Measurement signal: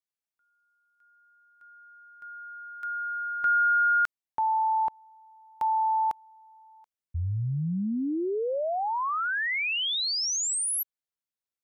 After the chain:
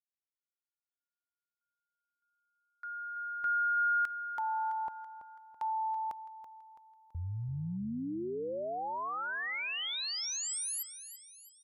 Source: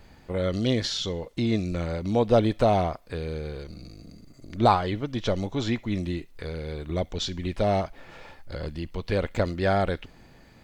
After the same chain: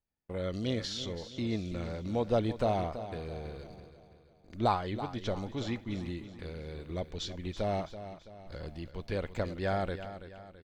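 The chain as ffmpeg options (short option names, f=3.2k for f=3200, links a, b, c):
-af "agate=range=-32dB:threshold=-40dB:ratio=16:release=79:detection=rms,aecho=1:1:331|662|993|1324|1655:0.251|0.113|0.0509|0.0229|0.0103,volume=-8.5dB"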